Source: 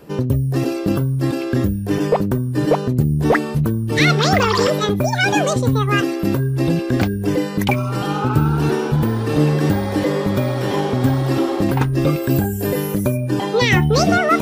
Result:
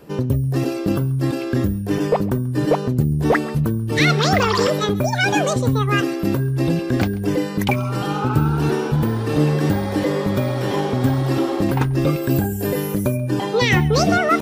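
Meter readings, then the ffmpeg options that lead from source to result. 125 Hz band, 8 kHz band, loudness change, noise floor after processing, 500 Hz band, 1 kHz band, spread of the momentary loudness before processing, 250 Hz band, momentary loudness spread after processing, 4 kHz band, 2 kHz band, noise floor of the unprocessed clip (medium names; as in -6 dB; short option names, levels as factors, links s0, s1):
-1.5 dB, -1.5 dB, -1.5 dB, -25 dBFS, -1.5 dB, -1.5 dB, 5 LU, -1.5 dB, 5 LU, -1.5 dB, -1.5 dB, -24 dBFS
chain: -af "aecho=1:1:136:0.0841,volume=0.841"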